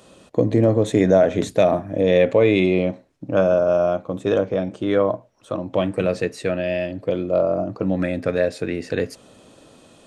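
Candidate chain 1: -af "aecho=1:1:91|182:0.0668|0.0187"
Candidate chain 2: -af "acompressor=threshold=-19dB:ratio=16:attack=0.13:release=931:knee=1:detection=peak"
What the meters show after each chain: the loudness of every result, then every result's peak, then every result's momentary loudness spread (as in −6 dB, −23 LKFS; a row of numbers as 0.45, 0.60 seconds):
−20.5, −30.0 LKFS; −4.0, −18.0 dBFS; 10, 9 LU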